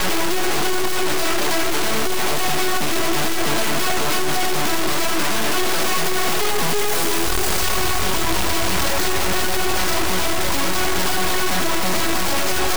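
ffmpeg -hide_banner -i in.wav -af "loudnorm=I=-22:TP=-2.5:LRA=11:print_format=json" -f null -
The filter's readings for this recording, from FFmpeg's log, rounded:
"input_i" : "-20.1",
"input_tp" : "-10.3",
"input_lra" : "0.5",
"input_thresh" : "-30.1",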